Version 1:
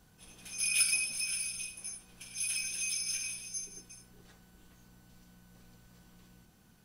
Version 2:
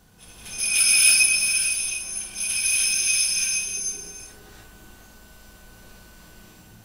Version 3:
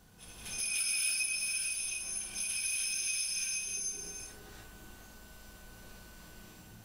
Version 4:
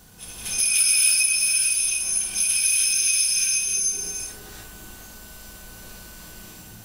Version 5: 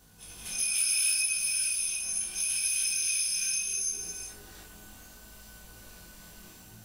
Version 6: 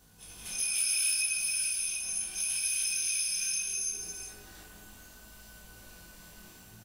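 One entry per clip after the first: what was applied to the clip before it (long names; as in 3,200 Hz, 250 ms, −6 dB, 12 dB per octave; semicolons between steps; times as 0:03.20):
mains-hum notches 60/120/180/240/300 Hz; reverb whose tail is shaped and stops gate 340 ms rising, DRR −6 dB; level +7 dB
downward compressor 2.5 to 1, threshold −31 dBFS, peak gain reduction 12.5 dB; level −4.5 dB
high-shelf EQ 4,700 Hz +7.5 dB; level +8.5 dB
chorus effect 0.72 Hz, delay 18 ms, depth 5.9 ms; level −5 dB
far-end echo of a speakerphone 170 ms, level −7 dB; level −2 dB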